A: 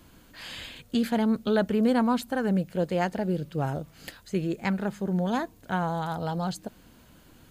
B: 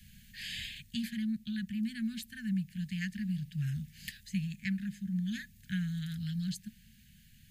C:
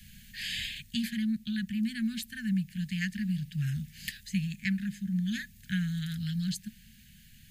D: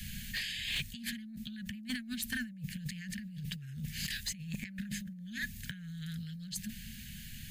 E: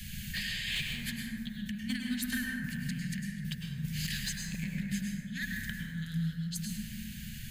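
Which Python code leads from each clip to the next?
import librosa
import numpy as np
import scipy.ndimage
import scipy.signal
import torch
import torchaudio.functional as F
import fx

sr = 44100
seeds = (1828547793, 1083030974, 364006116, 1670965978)

y1 = scipy.signal.sosfilt(scipy.signal.cheby1(5, 1.0, [220.0, 1700.0], 'bandstop', fs=sr, output='sos'), x)
y1 = fx.rider(y1, sr, range_db=5, speed_s=0.5)
y1 = y1 * librosa.db_to_amplitude(-4.5)
y2 = fx.peak_eq(y1, sr, hz=100.0, db=-3.0, octaves=2.6)
y2 = y2 * librosa.db_to_amplitude(5.5)
y3 = fx.over_compress(y2, sr, threshold_db=-42.0, ratio=-1.0)
y3 = np.clip(y3, -10.0 ** (-30.0 / 20.0), 10.0 ** (-30.0 / 20.0))
y3 = y3 * librosa.db_to_amplitude(1.0)
y4 = fx.rev_plate(y3, sr, seeds[0], rt60_s=2.2, hf_ratio=0.3, predelay_ms=90, drr_db=-1.0)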